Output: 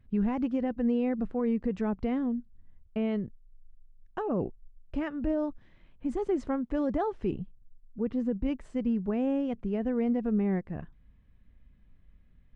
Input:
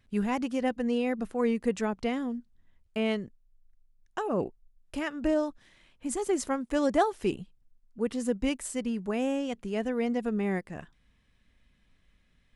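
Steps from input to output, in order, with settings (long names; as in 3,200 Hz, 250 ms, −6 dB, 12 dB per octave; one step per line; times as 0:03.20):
low-shelf EQ 210 Hz +9.5 dB
brickwall limiter −19.5 dBFS, peak gain reduction 7.5 dB
head-to-tape spacing loss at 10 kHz 32 dB, from 0:07.38 at 10 kHz 42 dB, from 0:08.45 at 10 kHz 35 dB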